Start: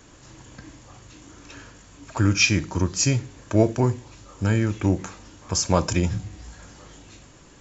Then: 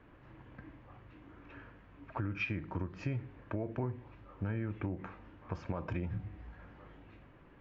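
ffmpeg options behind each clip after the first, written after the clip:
-af "lowpass=f=2.4k:w=0.5412,lowpass=f=2.4k:w=1.3066,alimiter=limit=-13.5dB:level=0:latency=1:release=142,acompressor=threshold=-24dB:ratio=5,volume=-8dB"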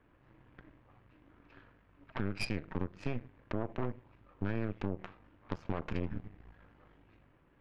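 -af "aeval=exprs='0.0794*(cos(1*acos(clip(val(0)/0.0794,-1,1)))-cos(1*PI/2))+0.0178*(cos(3*acos(clip(val(0)/0.0794,-1,1)))-cos(3*PI/2))+0.0141*(cos(6*acos(clip(val(0)/0.0794,-1,1)))-cos(6*PI/2))':c=same,volume=2dB"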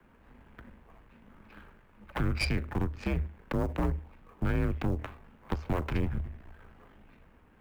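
-filter_complex "[0:a]acrossover=split=140|500|2900[a][b][c][d];[c]acrusher=bits=5:mode=log:mix=0:aa=0.000001[e];[a][b][e][d]amix=inputs=4:normalize=0,afreqshift=-76,volume=6.5dB"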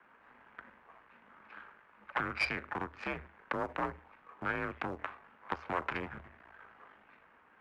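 -af "bandpass=f=1.4k:t=q:w=1.1:csg=0,volume=5.5dB"

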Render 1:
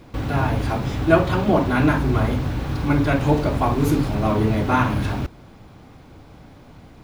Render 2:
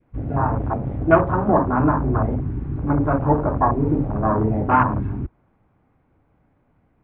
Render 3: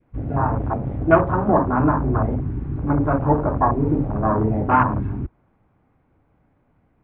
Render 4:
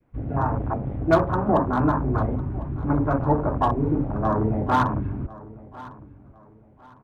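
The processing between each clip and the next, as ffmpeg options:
-af "afwtdn=0.0794,adynamicequalizer=threshold=0.0178:dfrequency=1000:dqfactor=1.5:tfrequency=1000:tqfactor=1.5:attack=5:release=100:ratio=0.375:range=3.5:mode=boostabove:tftype=bell,lowpass=f=2.3k:w=0.5412,lowpass=f=2.3k:w=1.3066,volume=-1dB"
-af anull
-filter_complex "[0:a]acrossover=split=250|1000[a][b][c];[c]volume=20.5dB,asoftclip=hard,volume=-20.5dB[d];[a][b][d]amix=inputs=3:normalize=0,aecho=1:1:1053|2106|3159:0.106|0.0328|0.0102,volume=-3dB"

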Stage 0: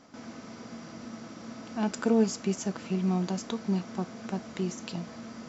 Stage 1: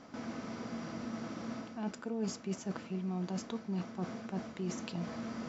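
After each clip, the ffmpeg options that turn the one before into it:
-af "highshelf=f=5.8k:g=-10.5,areverse,acompressor=threshold=-37dB:ratio=6,areverse,volume=2.5dB"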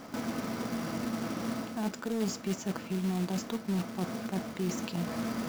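-filter_complex "[0:a]asplit=2[a][b];[b]alimiter=level_in=10dB:limit=-24dB:level=0:latency=1:release=241,volume=-10dB,volume=3dB[c];[a][c]amix=inputs=2:normalize=0,acrusher=bits=3:mode=log:mix=0:aa=0.000001"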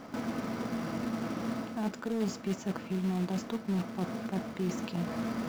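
-af "highshelf=f=4.6k:g=-8.5"

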